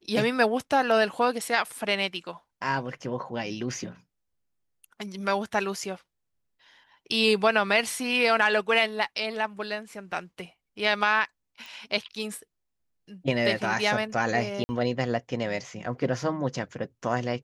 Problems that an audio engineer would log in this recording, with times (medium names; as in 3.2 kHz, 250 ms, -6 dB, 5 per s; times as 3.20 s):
11.66 s: pop
14.64–14.69 s: dropout 50 ms